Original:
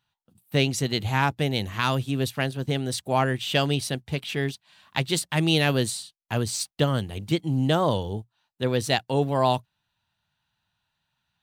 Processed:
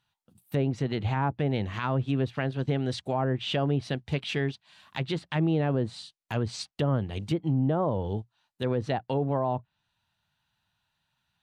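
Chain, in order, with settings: low-pass that closes with the level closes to 980 Hz, closed at -19 dBFS; peak limiter -18 dBFS, peak gain reduction 8.5 dB

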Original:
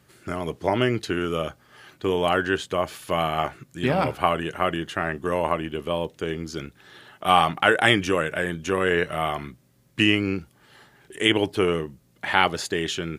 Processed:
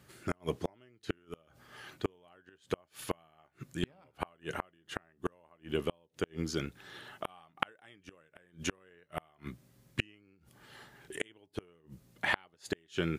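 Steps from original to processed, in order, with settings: inverted gate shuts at -15 dBFS, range -37 dB; trim -2 dB

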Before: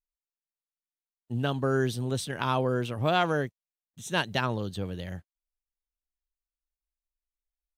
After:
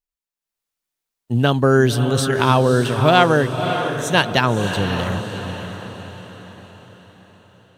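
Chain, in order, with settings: level rider gain up to 11 dB; on a send: echo that smears into a reverb 573 ms, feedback 47%, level -7.5 dB; on the sum: trim +1.5 dB

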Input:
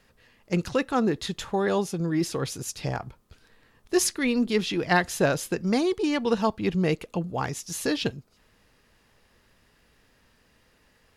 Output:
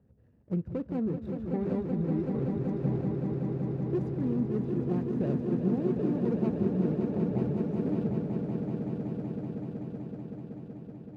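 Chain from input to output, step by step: median filter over 41 samples; high-pass 79 Hz 24 dB/octave; tilt EQ -4.5 dB/octave; compression 2:1, threshold -26 dBFS, peak gain reduction 8.5 dB; on a send: echo with a slow build-up 189 ms, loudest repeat 5, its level -6.5 dB; on the sum: trim -7.5 dB

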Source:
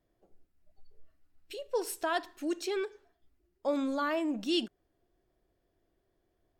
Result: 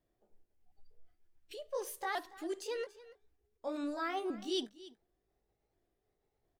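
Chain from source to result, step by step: sawtooth pitch modulation +3.5 st, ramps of 717 ms; delay 285 ms -18 dB; trim -4.5 dB

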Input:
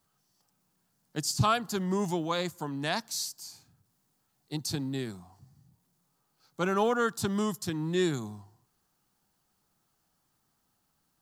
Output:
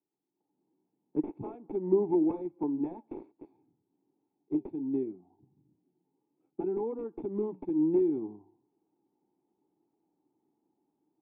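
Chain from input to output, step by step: tracing distortion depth 0.055 ms; high-pass 110 Hz; tilt shelf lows -8.5 dB, about 1.1 kHz; compression 12:1, threshold -30 dBFS, peak gain reduction 12 dB; transient shaper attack +4 dB, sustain -4 dB; level rider gain up to 13 dB; flange 0.72 Hz, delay 1.7 ms, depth 7 ms, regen -83%; integer overflow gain 17.5 dB; cascade formant filter u; small resonant body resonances 390/2600 Hz, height 13 dB, ringing for 20 ms; 5.03–7.05 s: Shepard-style phaser rising 1.5 Hz; trim +4 dB

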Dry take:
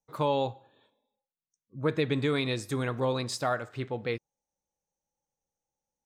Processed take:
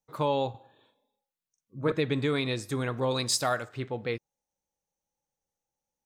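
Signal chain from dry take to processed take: 0.50–1.92 s: doubling 43 ms -4 dB; 3.11–3.65 s: treble shelf 3.5 kHz +12 dB

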